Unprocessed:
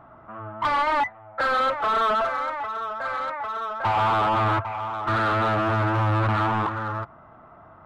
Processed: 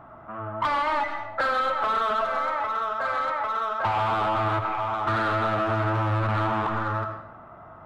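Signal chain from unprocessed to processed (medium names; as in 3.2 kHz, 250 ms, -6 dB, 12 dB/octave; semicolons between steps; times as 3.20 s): reverberation RT60 0.80 s, pre-delay 40 ms, DRR 7 dB; compression, threshold -24 dBFS, peak gain reduction 7 dB; trim +2 dB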